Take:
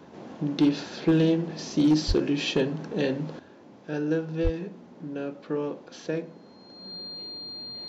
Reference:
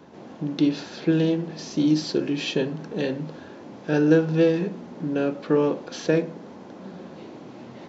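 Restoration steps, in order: clip repair -15 dBFS; band-stop 4.2 kHz, Q 30; 2.07–2.19 s: high-pass 140 Hz 24 dB/octave; 4.43–4.55 s: high-pass 140 Hz 24 dB/octave; trim 0 dB, from 3.39 s +9 dB

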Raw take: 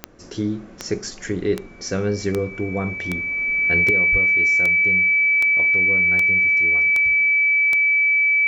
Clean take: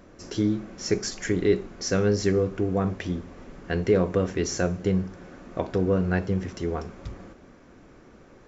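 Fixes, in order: de-click; band-stop 2.3 kHz, Q 30; de-plosive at 4.11 s; trim 0 dB, from 3.90 s +8.5 dB

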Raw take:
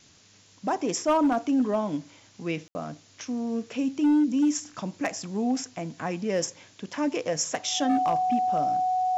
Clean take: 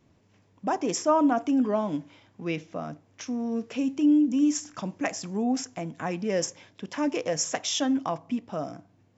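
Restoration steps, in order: clip repair -17.5 dBFS; band-stop 740 Hz, Q 30; room tone fill 2.68–2.75 s; noise print and reduce 6 dB

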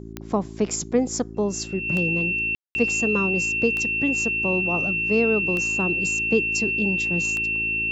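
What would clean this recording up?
de-click; de-hum 55 Hz, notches 7; band-stop 2.7 kHz, Q 30; room tone fill 2.55–2.75 s

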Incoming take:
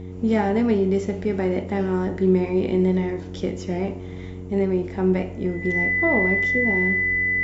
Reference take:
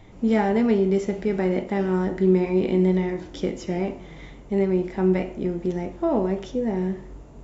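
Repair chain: de-hum 91.5 Hz, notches 5; band-stop 2 kHz, Q 30

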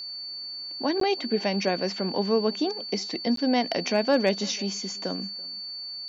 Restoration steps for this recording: clip repair -11.5 dBFS; band-stop 4.5 kHz, Q 30; interpolate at 1.00/3.36 s, 13 ms; inverse comb 335 ms -24 dB

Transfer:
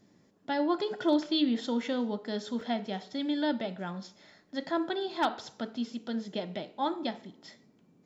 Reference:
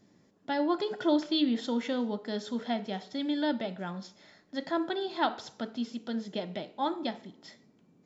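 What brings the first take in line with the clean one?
clip repair -17 dBFS; interpolate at 2.61 s, 2.4 ms

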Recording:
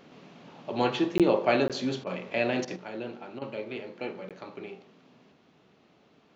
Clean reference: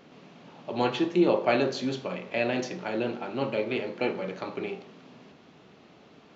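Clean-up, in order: interpolate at 1.18/1.68/4.29 s, 17 ms; interpolate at 2.04/2.65/3.39 s, 25 ms; gain correction +7.5 dB, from 2.76 s

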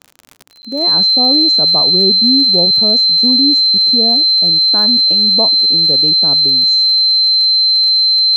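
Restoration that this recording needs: de-click; band-stop 4.1 kHz, Q 30; interpolate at 0.62 s, 10 ms

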